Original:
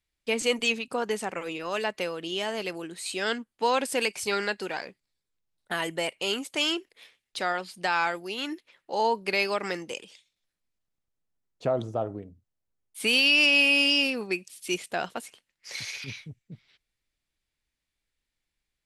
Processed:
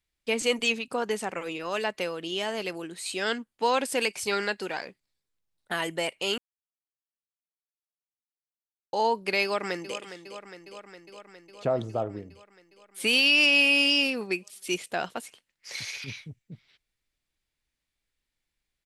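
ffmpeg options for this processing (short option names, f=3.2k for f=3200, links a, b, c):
-filter_complex "[0:a]asplit=2[a][b];[b]afade=t=in:st=9.43:d=0.01,afade=t=out:st=9.97:d=0.01,aecho=0:1:410|820|1230|1640|2050|2460|2870|3280|3690|4100|4510|4920:0.266073|0.199554|0.149666|0.112249|0.084187|0.0631403|0.0473552|0.0355164|0.0266373|0.019978|0.0149835|0.0112376[c];[a][c]amix=inputs=2:normalize=0,asplit=3[d][e][f];[d]atrim=end=6.38,asetpts=PTS-STARTPTS,afade=t=out:st=6.376:d=0.004:c=hsin[g];[e]atrim=start=6.38:end=8.93,asetpts=PTS-STARTPTS,volume=0[h];[f]atrim=start=8.93,asetpts=PTS-STARTPTS,afade=t=in:d=0.004:c=hsin[i];[g][h][i]concat=n=3:v=0:a=1"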